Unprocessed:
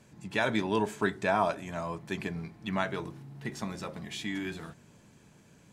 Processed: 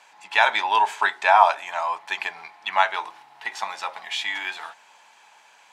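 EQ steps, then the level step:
high-pass with resonance 840 Hz, resonance Q 5.4
parametric band 2,800 Hz +12.5 dB 2.4 octaves
0.0 dB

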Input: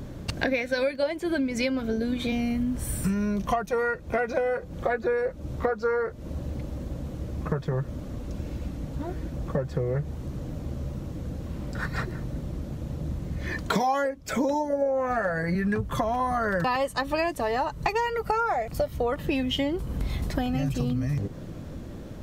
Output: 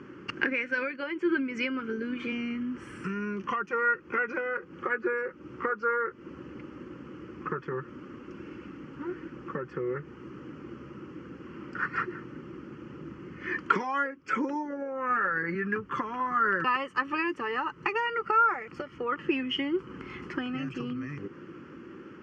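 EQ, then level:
loudspeaker in its box 300–4,700 Hz, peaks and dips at 360 Hz +9 dB, 1,300 Hz +8 dB, 2,900 Hz +9 dB
phaser with its sweep stopped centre 1,600 Hz, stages 4
0.0 dB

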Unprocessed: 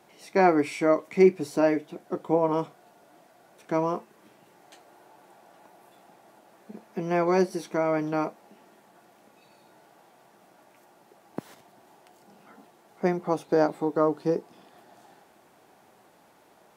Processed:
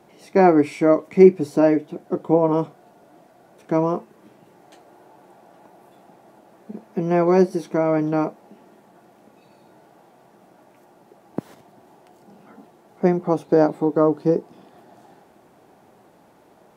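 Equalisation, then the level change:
tilt shelving filter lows +5 dB, about 790 Hz
+4.0 dB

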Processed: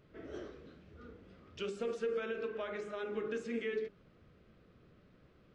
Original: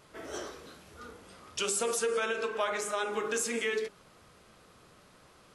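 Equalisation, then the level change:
head-to-tape spacing loss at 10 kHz 40 dB
parametric band 910 Hz −13.5 dB 1.2 octaves
+1.0 dB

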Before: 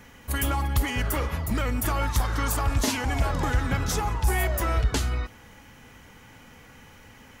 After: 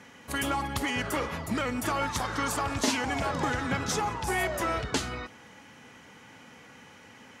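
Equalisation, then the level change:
high-pass filter 160 Hz 12 dB per octave
low-pass filter 8,600 Hz 12 dB per octave
0.0 dB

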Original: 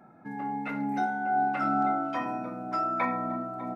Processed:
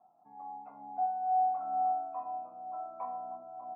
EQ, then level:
formant resonators in series a
high-shelf EQ 2,600 Hz −8 dB
0.0 dB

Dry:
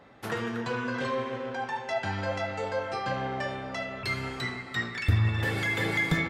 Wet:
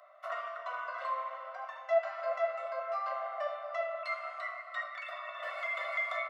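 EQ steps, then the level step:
Savitzky-Golay smoothing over 65 samples
Chebyshev high-pass filter 600 Hz, order 8
Butterworth band-reject 860 Hz, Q 2.1
+7.5 dB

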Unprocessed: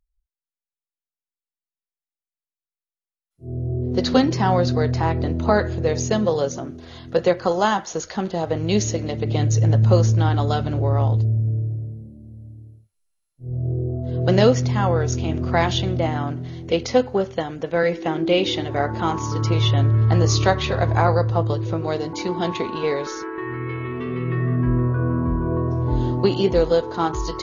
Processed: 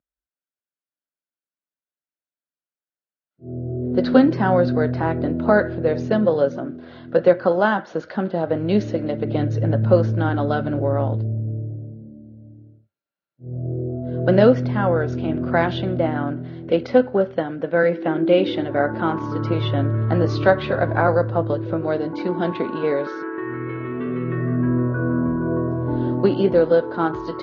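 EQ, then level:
high-frequency loss of the air 190 metres
loudspeaker in its box 130–5,200 Hz, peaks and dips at 290 Hz +4 dB, 580 Hz +8 dB, 1,500 Hz +10 dB
parametric band 210 Hz +5.5 dB 1.9 octaves
−3.0 dB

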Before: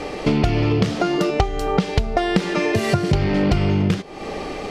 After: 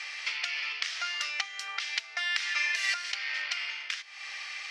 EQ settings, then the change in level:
four-pole ladder high-pass 1,600 Hz, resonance 40%
low-pass filter 7,800 Hz 12 dB per octave
parametric band 5,500 Hz +6 dB 0.47 octaves
+3.5 dB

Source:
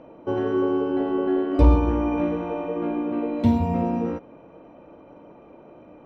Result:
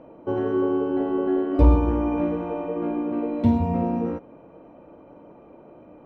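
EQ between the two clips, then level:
high-shelf EQ 2,400 Hz −8 dB
0.0 dB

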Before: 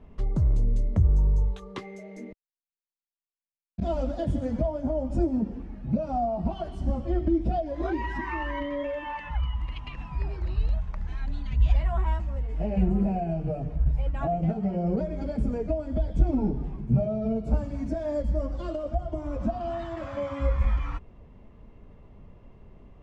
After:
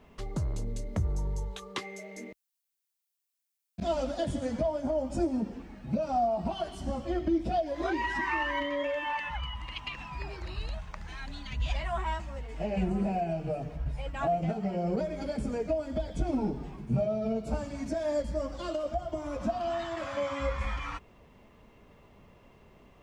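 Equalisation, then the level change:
spectral tilt +3 dB per octave
+2.0 dB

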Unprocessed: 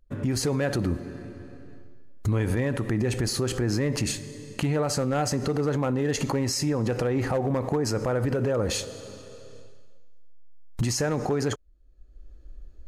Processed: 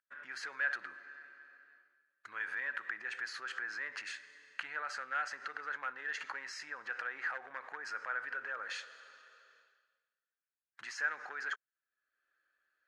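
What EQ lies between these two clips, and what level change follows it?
four-pole ladder band-pass 1,700 Hz, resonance 70%
+4.5 dB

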